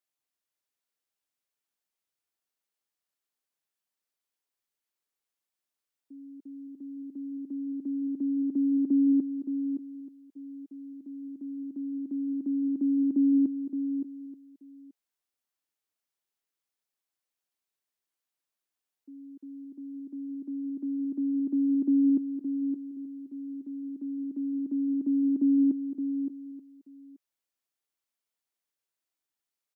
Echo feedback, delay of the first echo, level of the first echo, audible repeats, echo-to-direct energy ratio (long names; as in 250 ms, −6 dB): repeats not evenly spaced, 568 ms, −8.5 dB, 3, −8.0 dB